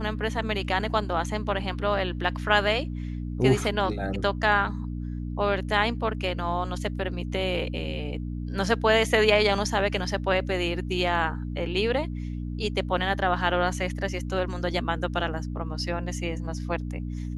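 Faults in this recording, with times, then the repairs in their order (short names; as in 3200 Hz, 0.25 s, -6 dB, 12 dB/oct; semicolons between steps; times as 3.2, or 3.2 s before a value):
hum 60 Hz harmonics 5 -32 dBFS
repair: de-hum 60 Hz, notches 5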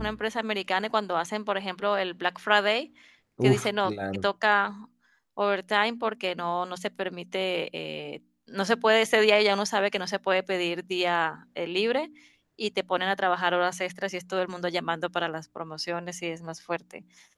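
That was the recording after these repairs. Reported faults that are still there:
none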